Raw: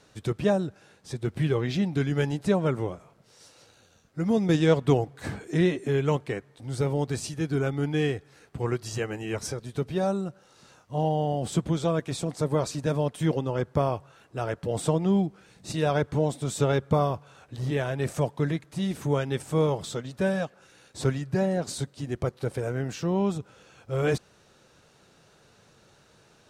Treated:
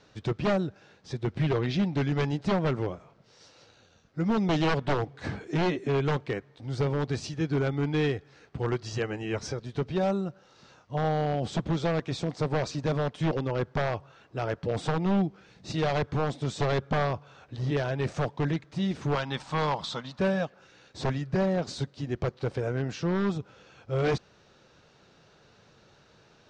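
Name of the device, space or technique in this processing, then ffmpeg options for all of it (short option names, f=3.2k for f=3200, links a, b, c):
synthesiser wavefolder: -filter_complex "[0:a]asettb=1/sr,asplit=3[a][b][c];[a]atrim=end=19.154[d];[b]atrim=start=19.15:end=20.19,asetpts=PTS-STARTPTS,afade=t=in:d=0.004:c=qsin,afade=t=out:st=1.036:d=0.004:c=qsin,equalizer=f=100:t=o:w=0.67:g=-11,equalizer=f=400:t=o:w=0.67:g=-10,equalizer=f=1k:t=o:w=0.67:g=10,equalizer=f=4k:t=o:w=0.67:g=6[e];[c]atrim=start=20.186[f];[d][e]acrossfade=d=0.004:c1=hsin:c2=qsin[g];[g][f]acrossfade=d=0.004:c1=qsin:c2=hsin,aeval=exprs='0.106*(abs(mod(val(0)/0.106+3,4)-2)-1)':c=same,lowpass=f=5.8k:w=0.5412,lowpass=f=5.8k:w=1.3066"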